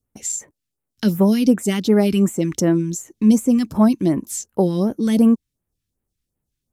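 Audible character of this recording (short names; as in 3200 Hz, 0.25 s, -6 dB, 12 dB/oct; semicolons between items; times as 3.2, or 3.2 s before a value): phasing stages 2, 2.7 Hz, lowest notch 590–4800 Hz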